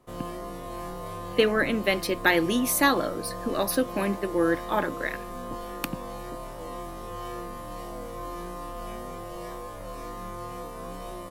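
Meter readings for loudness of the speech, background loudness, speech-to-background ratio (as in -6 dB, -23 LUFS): -26.0 LUFS, -37.5 LUFS, 11.5 dB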